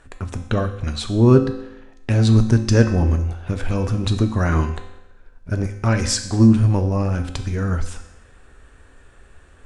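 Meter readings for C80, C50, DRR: 12.5 dB, 10.0 dB, 6.0 dB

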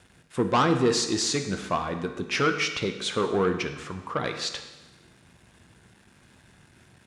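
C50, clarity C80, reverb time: 8.5 dB, 10.5 dB, 1.1 s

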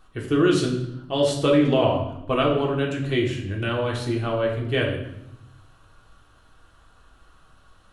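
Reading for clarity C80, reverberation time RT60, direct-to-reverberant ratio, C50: 9.0 dB, 0.80 s, −2.0 dB, 5.5 dB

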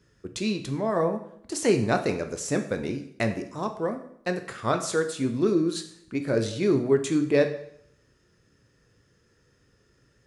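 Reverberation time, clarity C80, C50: 0.70 s, 13.5 dB, 11.0 dB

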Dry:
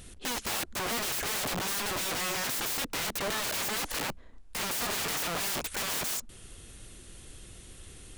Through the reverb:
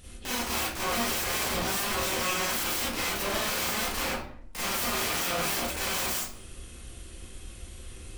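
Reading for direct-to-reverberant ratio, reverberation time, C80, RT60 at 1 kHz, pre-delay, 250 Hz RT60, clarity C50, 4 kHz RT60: −8.0 dB, 0.60 s, 5.5 dB, 0.55 s, 31 ms, 0.75 s, −0.5 dB, 0.40 s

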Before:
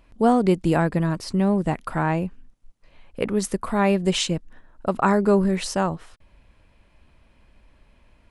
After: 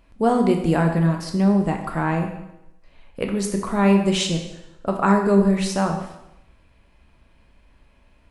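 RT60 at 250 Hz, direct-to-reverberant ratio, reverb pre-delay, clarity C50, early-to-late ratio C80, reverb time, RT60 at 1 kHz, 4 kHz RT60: 0.85 s, 3.0 dB, 5 ms, 6.5 dB, 9.0 dB, 0.85 s, 0.85 s, 0.80 s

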